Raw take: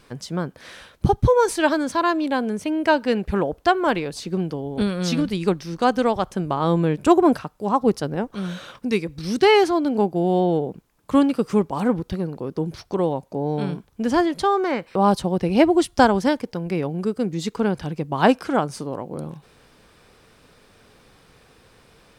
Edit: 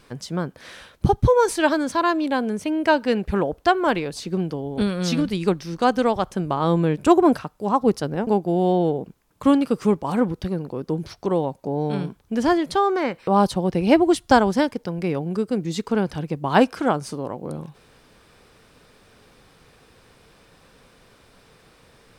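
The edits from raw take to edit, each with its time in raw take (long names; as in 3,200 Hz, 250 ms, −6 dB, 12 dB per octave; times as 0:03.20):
0:08.27–0:09.95: remove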